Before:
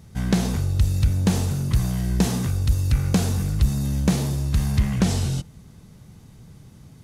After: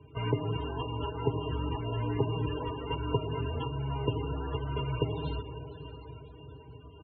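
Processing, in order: block floating point 3-bit; notches 60/120/180/240/300/360/420 Hz; comb 5.6 ms, depth 87%; compressor 8:1, threshold -21 dBFS, peak gain reduction 10.5 dB; mistuned SSB -71 Hz 150–3600 Hz; formant shift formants +3 st; resonator 150 Hz, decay 0.42 s, harmonics all, mix 50%; small resonant body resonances 400/960/2800 Hz, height 15 dB, ringing for 75 ms; on a send: diffused feedback echo 0.533 s, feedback 51%, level -11.5 dB; on the sum: loudest bins only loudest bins 32

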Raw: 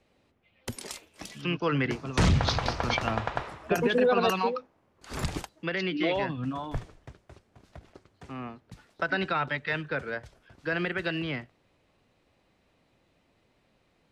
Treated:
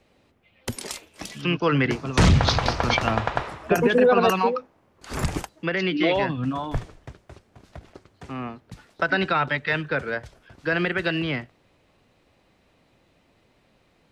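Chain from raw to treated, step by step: 3.56–5.82 dynamic EQ 3900 Hz, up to -6 dB, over -50 dBFS, Q 1.7; gain +6 dB

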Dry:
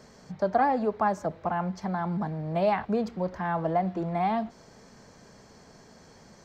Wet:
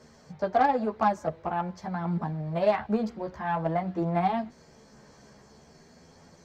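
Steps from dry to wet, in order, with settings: chorus voices 2, 0.48 Hz, delay 13 ms, depth 1.3 ms; added harmonics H 7 -29 dB, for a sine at -14.5 dBFS; gain +3 dB

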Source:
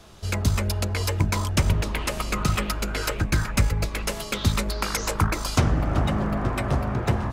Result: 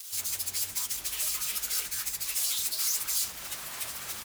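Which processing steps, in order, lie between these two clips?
downsampling 32000 Hz; high shelf 2900 Hz +11.5 dB; in parallel at +1 dB: vocal rider within 4 dB 2 s; on the sum: fuzz box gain 36 dB, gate -33 dBFS; plain phase-vocoder stretch 0.58×; pre-emphasis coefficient 0.97; gain -8 dB

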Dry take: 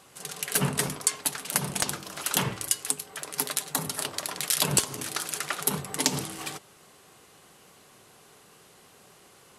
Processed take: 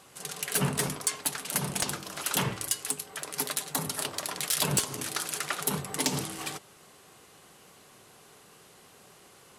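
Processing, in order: soft clip -17 dBFS, distortion -11 dB

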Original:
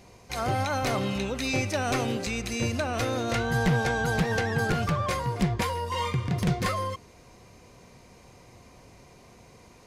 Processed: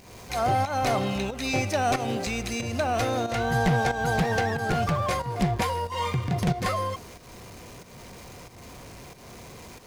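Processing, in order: zero-crossing step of -41.5 dBFS; dynamic EQ 730 Hz, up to +7 dB, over -46 dBFS, Q 3.2; pump 92 bpm, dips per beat 1, -10 dB, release 0.253 s

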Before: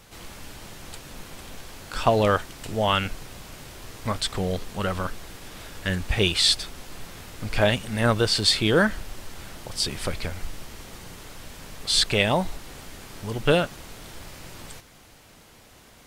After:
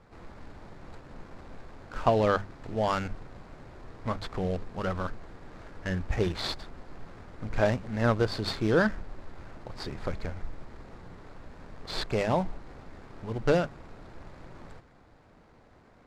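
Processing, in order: median filter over 15 samples; air absorption 69 m; notches 50/100/150/200 Hz; gain -3 dB

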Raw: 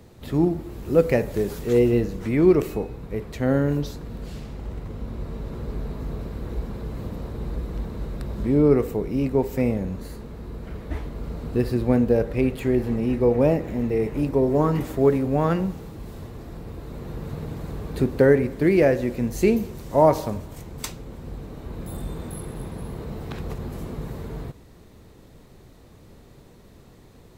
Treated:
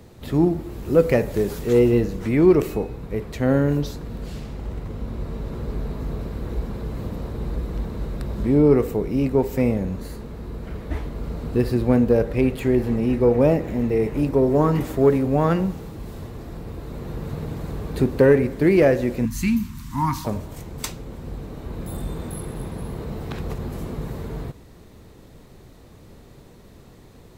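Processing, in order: 19.25–20.25 Chebyshev band-stop 270–1000 Hz, order 3; soft clip -6 dBFS, distortion -26 dB; gain +2.5 dB

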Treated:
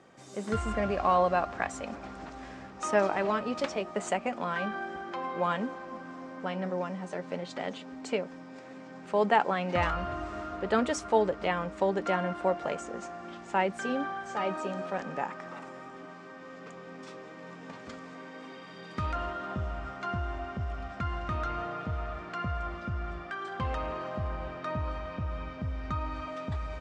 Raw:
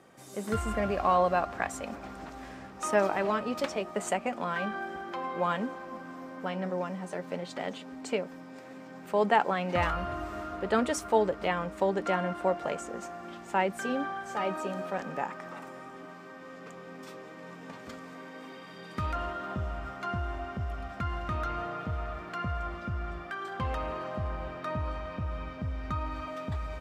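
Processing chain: LPF 7800 Hz 24 dB/oct

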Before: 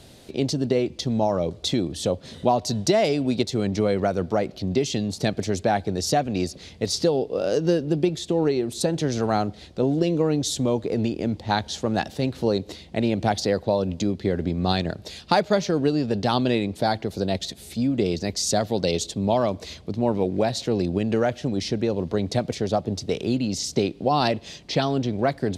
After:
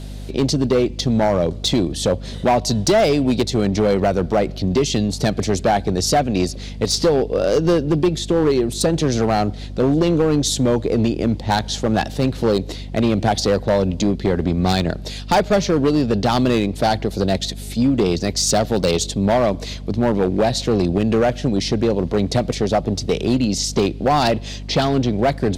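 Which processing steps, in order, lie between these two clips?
hum 50 Hz, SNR 14 dB; overloaded stage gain 17 dB; gain +6.5 dB

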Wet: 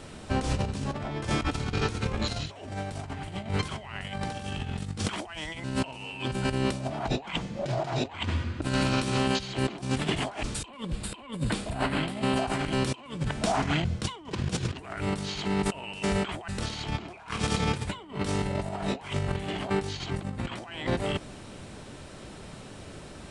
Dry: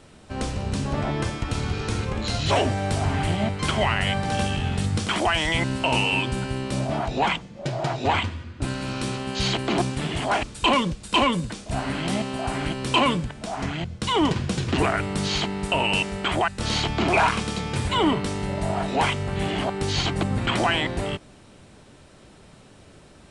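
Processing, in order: 10.68–12.36 bell 6000 Hz -11 dB 0.48 oct; negative-ratio compressor -30 dBFS, ratio -0.5

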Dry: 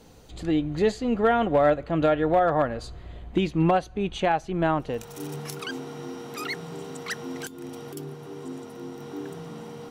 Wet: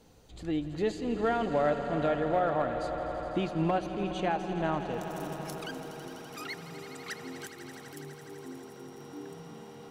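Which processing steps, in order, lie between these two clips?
swelling echo 83 ms, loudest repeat 5, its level -14 dB; gain -7.5 dB

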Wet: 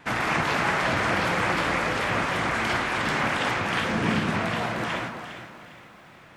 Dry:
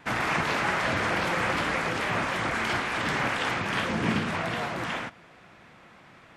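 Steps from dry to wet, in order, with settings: on a send: echo with dull and thin repeats by turns 0.203 s, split 1400 Hz, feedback 57%, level -6 dB; on the sum: lo-fi delay 0.357 s, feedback 35%, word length 9-bit, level -14 dB; gain +1.5 dB

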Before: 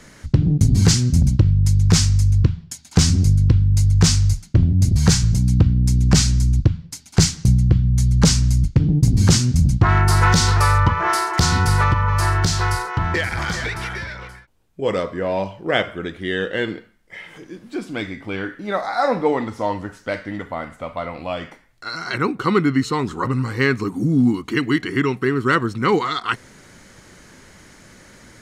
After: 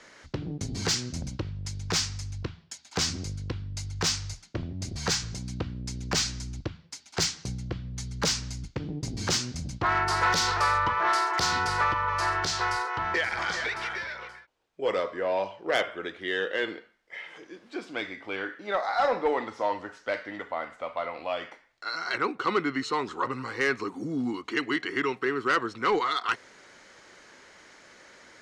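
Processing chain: three-band isolator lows -18 dB, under 350 Hz, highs -20 dB, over 6800 Hz; added harmonics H 5 -17 dB, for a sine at -4.5 dBFS; gain -8 dB

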